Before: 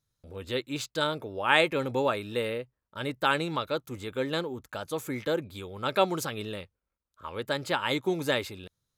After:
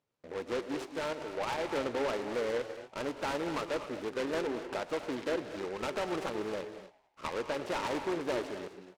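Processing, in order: median filter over 25 samples; treble shelf 2.3 kHz +5.5 dB; in parallel at +2 dB: compression, threshold -36 dBFS, peak gain reduction 16 dB; on the sum: peak limiter -18.5 dBFS, peak gain reduction 8.5 dB; 0.85–1.70 s: level held to a coarse grid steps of 10 dB; saturation -27.5 dBFS, distortion -12 dB; band-pass 310–4200 Hz; frequency-shifting echo 114 ms, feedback 53%, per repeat +100 Hz, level -22 dB; on a send at -8 dB: reverberation, pre-delay 3 ms; on the sum: delay time shaken by noise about 1.2 kHz, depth 0.074 ms

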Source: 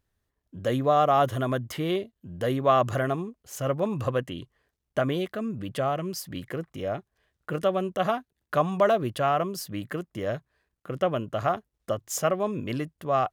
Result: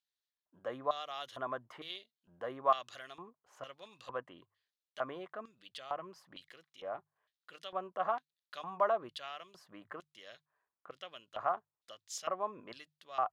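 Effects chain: LFO band-pass square 1.1 Hz 1–4 kHz; hum notches 50/100/150 Hz; trim -2 dB

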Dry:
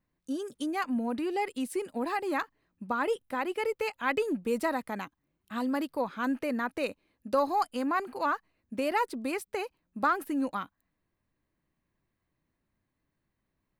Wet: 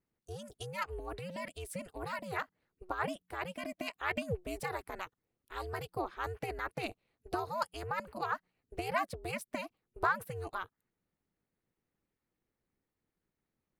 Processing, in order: harmonic-percussive split harmonic -9 dB; ring modulator 180 Hz

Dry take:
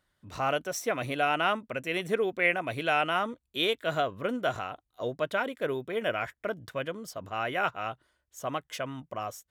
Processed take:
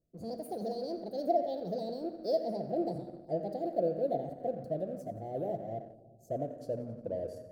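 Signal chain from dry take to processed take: gliding tape speed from 172% -> 81%; Chebyshev band-stop 690–4500 Hz, order 5; resonant high shelf 3.8 kHz -13 dB, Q 3; on a send: thinning echo 89 ms, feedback 62%, high-pass 210 Hz, level -16 dB; on the sum: simulated room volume 1500 m³, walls mixed, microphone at 0.75 m; in parallel at -9 dB: hysteresis with a dead band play -41.5 dBFS; on the sum: trim -2 dB

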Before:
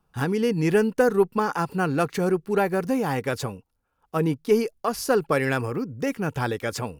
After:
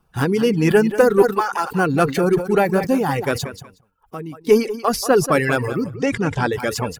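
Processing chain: coarse spectral quantiser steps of 15 dB; 1.22–1.71 s: high-pass 610 Hz 12 dB/octave; 3.44–4.47 s: compression 2.5:1, threshold -42 dBFS, peak gain reduction 15 dB; feedback delay 183 ms, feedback 16%, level -10.5 dB; reverb removal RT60 0.63 s; 5.95–6.53 s: low-pass 8.2 kHz 24 dB/octave; decay stretcher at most 150 dB/s; trim +6.5 dB

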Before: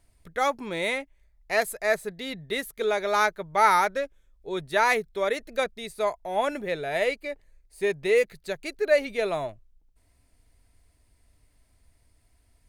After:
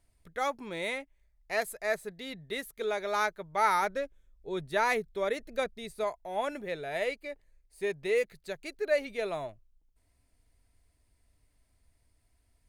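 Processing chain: 3.82–6.04 s: bass shelf 400 Hz +5.5 dB; trim -6.5 dB

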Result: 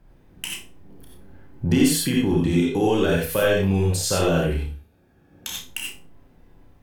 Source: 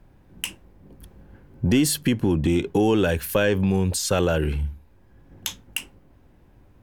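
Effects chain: 4.59–5.48 s: comb of notches 1 kHz; flutter echo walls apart 5.3 m, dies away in 0.29 s; gated-style reverb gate 110 ms rising, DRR -1.5 dB; trim -3.5 dB

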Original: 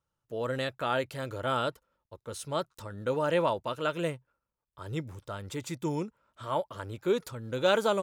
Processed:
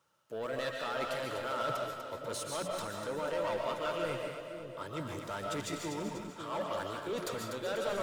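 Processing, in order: block-companded coder 7-bit; high-pass 67 Hz 24 dB/octave; peaking EQ 210 Hz +4.5 dB 1.9 oct; hum notches 60/120/180 Hz; reverse; compression 6:1, threshold -41 dBFS, peak gain reduction 20.5 dB; reverse; overdrive pedal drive 19 dB, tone 7.6 kHz, clips at -28.5 dBFS; two-band feedback delay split 590 Hz, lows 547 ms, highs 245 ms, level -7.5 dB; on a send at -1.5 dB: reverberation RT60 0.35 s, pre-delay 100 ms

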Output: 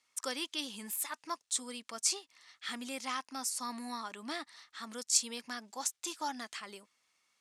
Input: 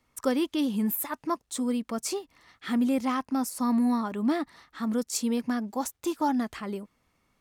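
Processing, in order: frequency weighting ITU-R 468; trim -8 dB

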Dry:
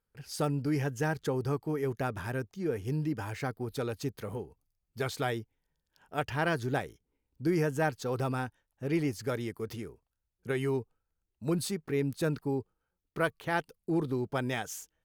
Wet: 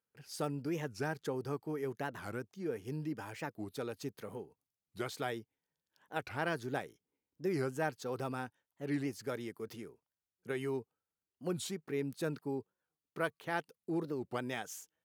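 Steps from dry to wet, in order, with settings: high-pass 160 Hz 12 dB/octave; warped record 45 rpm, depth 250 cents; trim -5.5 dB

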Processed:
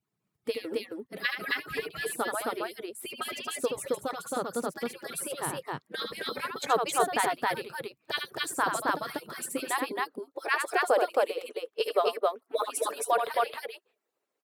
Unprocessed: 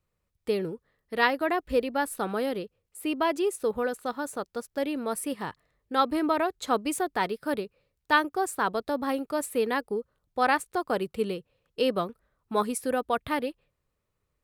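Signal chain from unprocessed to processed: harmonic-percussive separation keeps percussive; high-pass sweep 150 Hz -> 470 Hz, 9.18–10.73 s; loudspeakers at several distances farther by 26 m -6 dB, 92 m -1 dB

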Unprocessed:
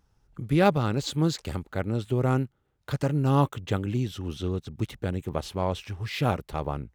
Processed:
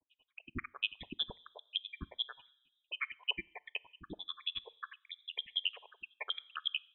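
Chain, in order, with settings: random holes in the spectrogram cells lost 78%; high-pass 600 Hz 12 dB/octave; compression 2:1, threshold -48 dBFS, peak gain reduction 10.5 dB; granulator 60 ms, grains 11 per s, spray 18 ms, pitch spread up and down by 0 st; on a send at -20.5 dB: reverberation RT60 0.90 s, pre-delay 5 ms; on the sum: frequency inversion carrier 3.8 kHz; random flutter of the level, depth 50%; trim +16 dB

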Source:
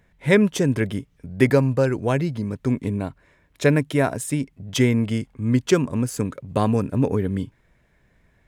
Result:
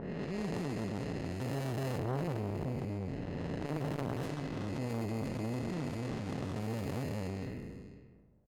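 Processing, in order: spectral blur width 795 ms; treble shelf 3.8 kHz +10 dB; sample-rate reducer 2.3 kHz, jitter 0%; 1.98–4.23 s: tone controls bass +5 dB, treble -5 dB; level-controlled noise filter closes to 700 Hz, open at -21 dBFS; delay 491 ms -19 dB; transformer saturation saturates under 680 Hz; trim -7 dB

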